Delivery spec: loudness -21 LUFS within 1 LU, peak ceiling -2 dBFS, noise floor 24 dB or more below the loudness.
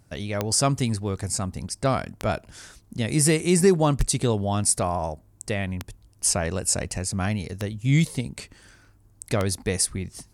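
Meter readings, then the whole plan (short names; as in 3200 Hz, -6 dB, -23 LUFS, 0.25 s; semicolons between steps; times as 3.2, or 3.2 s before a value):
clicks 6; loudness -24.5 LUFS; peak -7.0 dBFS; loudness target -21.0 LUFS
-> de-click; gain +3.5 dB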